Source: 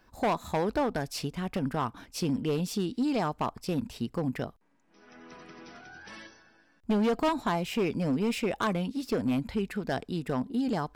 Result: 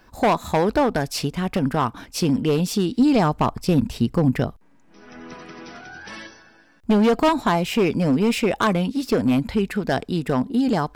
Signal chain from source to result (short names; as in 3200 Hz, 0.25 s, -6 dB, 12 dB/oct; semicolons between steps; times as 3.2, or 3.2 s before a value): 2.99–5.34 low shelf 190 Hz +8 dB; gain +9 dB